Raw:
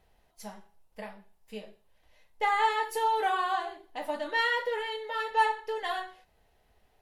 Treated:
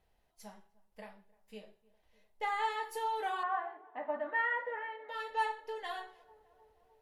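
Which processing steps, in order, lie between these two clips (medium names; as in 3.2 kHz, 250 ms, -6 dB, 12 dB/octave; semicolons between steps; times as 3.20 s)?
3.43–5.09 s: cabinet simulation 220–2200 Hz, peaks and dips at 250 Hz +9 dB, 410 Hz -8 dB, 600 Hz +6 dB, 850 Hz +3 dB, 1.2 kHz +5 dB, 1.8 kHz +5 dB; tape echo 304 ms, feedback 83%, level -22 dB, low-pass 1.1 kHz; trim -8 dB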